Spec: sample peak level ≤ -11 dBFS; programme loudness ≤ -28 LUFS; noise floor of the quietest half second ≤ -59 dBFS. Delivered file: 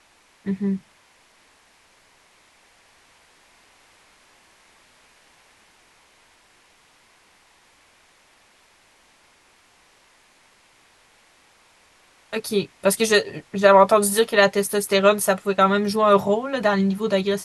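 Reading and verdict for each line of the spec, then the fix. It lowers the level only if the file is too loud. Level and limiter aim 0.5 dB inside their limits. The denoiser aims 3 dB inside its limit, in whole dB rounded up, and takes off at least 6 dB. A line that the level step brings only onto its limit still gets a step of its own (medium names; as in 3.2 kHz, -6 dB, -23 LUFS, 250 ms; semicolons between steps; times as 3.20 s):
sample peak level -1.5 dBFS: fail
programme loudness -19.5 LUFS: fail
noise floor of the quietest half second -57 dBFS: fail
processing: trim -9 dB; peak limiter -11.5 dBFS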